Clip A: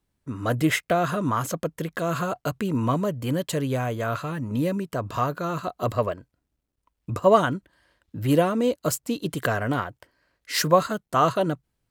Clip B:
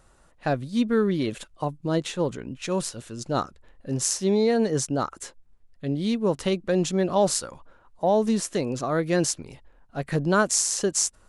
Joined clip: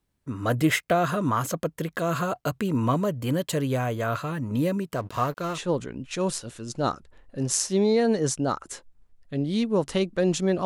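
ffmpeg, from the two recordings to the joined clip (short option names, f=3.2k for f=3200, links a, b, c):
-filter_complex "[0:a]asettb=1/sr,asplit=3[a][b][c];[a]atrim=end=4.954[d];[b]atrim=start=4.95:end=5.6,asetpts=PTS-STARTPTS,afade=t=in:d=0.004:c=qsin,afade=t=out:st=0.646:d=0.004:c=qsin,aeval=exprs='sgn(val(0))*max(abs(val(0))-0.00891,0)':c=same[e];[c]atrim=start=5.596[f];[d][e]acrossfade=d=0.004:c1=hsin:c2=qsin[g];[g][f]acrossfade=d=0.004:c1=qsin:c2=hsin,apad=whole_dur=10.65,atrim=end=10.65,atrim=end=5.6,asetpts=PTS-STARTPTS[h];[1:a]atrim=start=2.03:end=7.16,asetpts=PTS-STARTPTS[i];[h][i]acrossfade=d=0.08:c1=tri:c2=tri"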